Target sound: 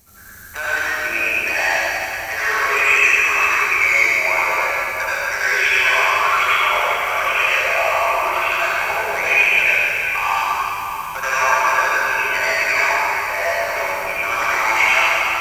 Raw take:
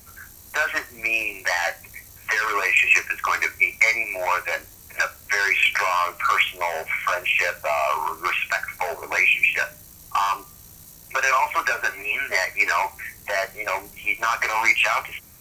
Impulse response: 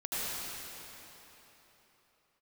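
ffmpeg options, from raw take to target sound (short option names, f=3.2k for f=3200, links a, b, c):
-filter_complex "[1:a]atrim=start_sample=2205[a];[0:a][a]afir=irnorm=-1:irlink=0,volume=-1dB"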